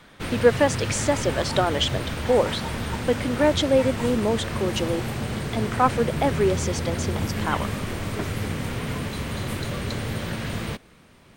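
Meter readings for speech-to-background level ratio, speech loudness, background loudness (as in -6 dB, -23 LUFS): 4.5 dB, -24.5 LUFS, -29.0 LUFS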